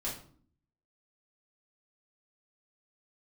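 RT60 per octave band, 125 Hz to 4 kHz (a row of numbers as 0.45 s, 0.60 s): 0.85 s, 0.85 s, 0.55 s, 0.50 s, 0.35 s, 0.35 s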